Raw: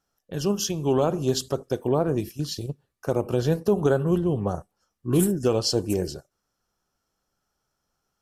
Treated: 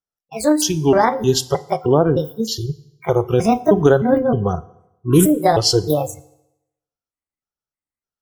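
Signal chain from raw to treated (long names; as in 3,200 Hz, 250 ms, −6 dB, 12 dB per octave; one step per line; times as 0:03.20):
pitch shifter gated in a rhythm +7 semitones, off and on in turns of 309 ms
noise reduction from a noise print of the clip's start 27 dB
feedback delay network reverb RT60 0.87 s, low-frequency decay 0.95×, high-frequency decay 0.9×, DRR 16.5 dB
level +8.5 dB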